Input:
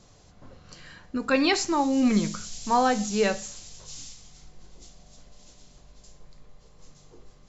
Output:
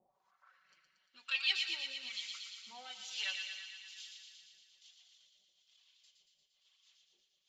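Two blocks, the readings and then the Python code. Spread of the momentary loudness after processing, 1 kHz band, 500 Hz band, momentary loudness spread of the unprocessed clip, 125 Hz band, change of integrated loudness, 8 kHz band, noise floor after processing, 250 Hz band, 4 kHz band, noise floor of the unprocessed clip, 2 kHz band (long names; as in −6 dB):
20 LU, −30.0 dB, −37.5 dB, 19 LU, below −40 dB, −13.5 dB, can't be measured, −79 dBFS, below −40 dB, −2.5 dB, −55 dBFS, −8.0 dB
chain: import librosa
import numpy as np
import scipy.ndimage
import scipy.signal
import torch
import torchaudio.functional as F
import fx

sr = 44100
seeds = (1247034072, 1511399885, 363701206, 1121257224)

p1 = np.where(x < 0.0, 10.0 ** (-7.0 / 20.0) * x, x)
p2 = fx.harmonic_tremolo(p1, sr, hz=1.1, depth_pct=100, crossover_hz=700.0)
p3 = fx.peak_eq(p2, sr, hz=4500.0, db=4.5, octaves=2.4)
p4 = fx.filter_sweep_bandpass(p3, sr, from_hz=800.0, to_hz=3200.0, start_s=0.07, end_s=1.04, q=4.2)
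p5 = fx.dereverb_blind(p4, sr, rt60_s=0.76)
p6 = p5 + 0.74 * np.pad(p5, (int(5.3 * sr / 1000.0), 0))[:len(p5)]
p7 = p6 + fx.echo_wet_highpass(p6, sr, ms=116, feedback_pct=71, hz=1600.0, wet_db=-4.5, dry=0)
y = fx.rev_gated(p7, sr, seeds[0], gate_ms=360, shape='flat', drr_db=11.5)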